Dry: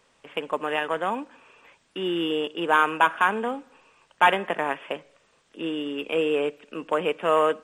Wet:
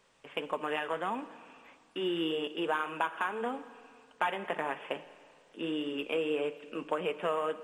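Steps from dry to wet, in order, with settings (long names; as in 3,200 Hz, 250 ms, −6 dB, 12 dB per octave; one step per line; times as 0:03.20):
downward compressor 6 to 1, threshold −24 dBFS, peak gain reduction 11 dB
flanger 1.7 Hz, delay 4.7 ms, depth 4.1 ms, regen −56%
four-comb reverb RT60 2.2 s, DRR 14.5 dB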